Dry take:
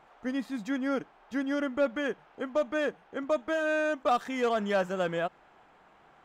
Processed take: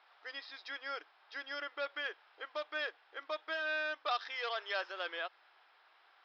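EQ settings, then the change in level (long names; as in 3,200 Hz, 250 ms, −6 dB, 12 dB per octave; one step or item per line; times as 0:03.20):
linear-phase brick-wall high-pass 290 Hz
Chebyshev low-pass with heavy ripple 5,300 Hz, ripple 3 dB
first difference
+10.0 dB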